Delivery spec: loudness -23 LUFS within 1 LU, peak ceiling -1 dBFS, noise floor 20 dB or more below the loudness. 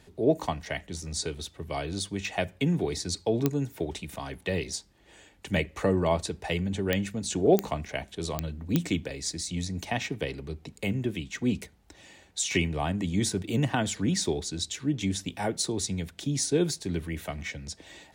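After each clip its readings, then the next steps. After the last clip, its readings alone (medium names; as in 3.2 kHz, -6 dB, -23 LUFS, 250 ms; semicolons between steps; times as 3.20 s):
clicks found 5; loudness -30.0 LUFS; peak level -8.5 dBFS; loudness target -23.0 LUFS
-> de-click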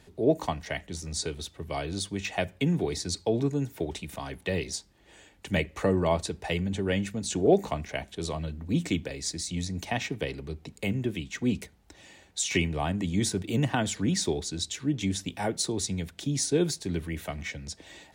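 clicks found 0; loudness -30.0 LUFS; peak level -9.5 dBFS; loudness target -23.0 LUFS
-> trim +7 dB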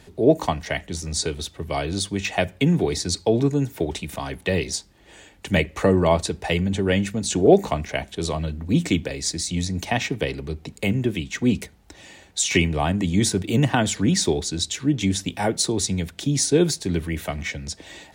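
loudness -23.0 LUFS; peak level -2.5 dBFS; noise floor -53 dBFS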